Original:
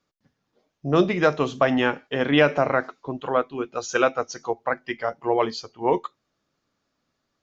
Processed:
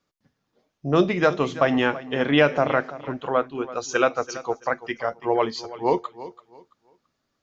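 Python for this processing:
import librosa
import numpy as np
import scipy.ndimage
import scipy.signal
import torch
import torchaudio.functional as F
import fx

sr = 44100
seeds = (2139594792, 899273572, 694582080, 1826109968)

y = fx.echo_feedback(x, sr, ms=334, feedback_pct=26, wet_db=-16)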